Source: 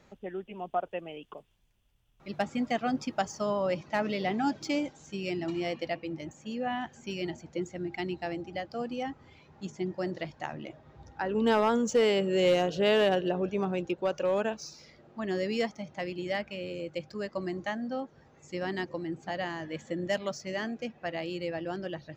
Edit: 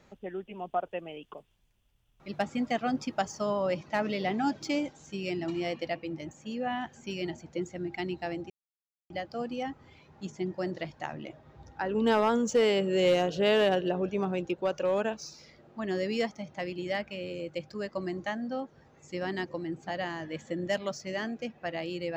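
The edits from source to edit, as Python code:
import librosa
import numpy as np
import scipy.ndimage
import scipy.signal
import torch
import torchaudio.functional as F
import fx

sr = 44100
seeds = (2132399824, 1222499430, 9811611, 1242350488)

y = fx.edit(x, sr, fx.insert_silence(at_s=8.5, length_s=0.6), tone=tone)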